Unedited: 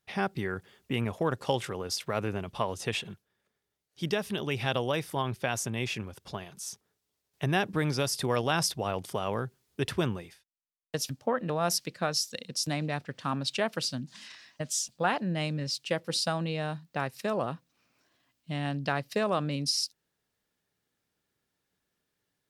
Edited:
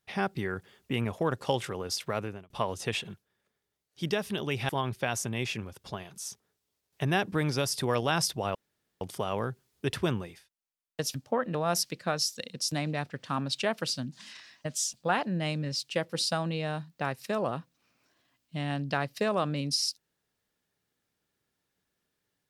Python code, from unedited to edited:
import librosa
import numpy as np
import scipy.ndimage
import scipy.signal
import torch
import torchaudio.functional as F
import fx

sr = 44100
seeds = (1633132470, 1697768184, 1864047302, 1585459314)

y = fx.edit(x, sr, fx.fade_out_span(start_s=2.11, length_s=0.39),
    fx.cut(start_s=4.69, length_s=0.41),
    fx.insert_room_tone(at_s=8.96, length_s=0.46), tone=tone)